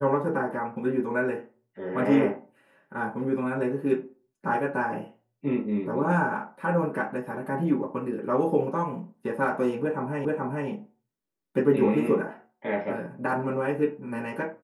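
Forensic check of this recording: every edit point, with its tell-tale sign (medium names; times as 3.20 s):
10.25 s: repeat of the last 0.43 s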